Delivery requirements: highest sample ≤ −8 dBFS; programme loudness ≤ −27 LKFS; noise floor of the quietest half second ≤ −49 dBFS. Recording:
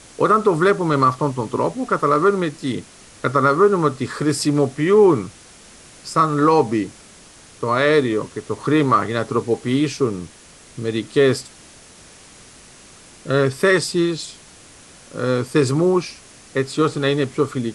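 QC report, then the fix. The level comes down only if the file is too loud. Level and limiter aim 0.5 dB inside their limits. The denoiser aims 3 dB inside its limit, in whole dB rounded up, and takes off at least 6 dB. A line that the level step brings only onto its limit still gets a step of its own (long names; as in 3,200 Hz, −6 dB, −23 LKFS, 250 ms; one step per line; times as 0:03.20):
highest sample −5.0 dBFS: out of spec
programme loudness −19.0 LKFS: out of spec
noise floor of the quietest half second −45 dBFS: out of spec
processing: level −8.5 dB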